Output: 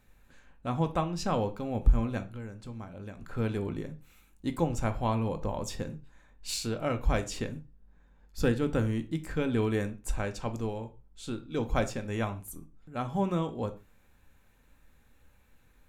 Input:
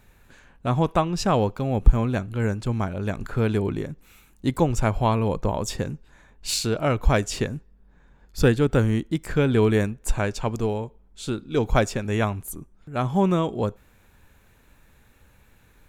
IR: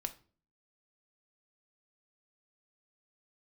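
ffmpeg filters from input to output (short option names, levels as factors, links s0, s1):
-filter_complex "[0:a]asplit=3[s0][s1][s2];[s0]afade=t=out:st=2.23:d=0.02[s3];[s1]acompressor=threshold=0.0282:ratio=4,afade=t=in:st=2.23:d=0.02,afade=t=out:st=3.3:d=0.02[s4];[s2]afade=t=in:st=3.3:d=0.02[s5];[s3][s4][s5]amix=inputs=3:normalize=0[s6];[1:a]atrim=start_sample=2205,afade=t=out:st=0.2:d=0.01,atrim=end_sample=9261[s7];[s6][s7]afir=irnorm=-1:irlink=0,volume=0.422"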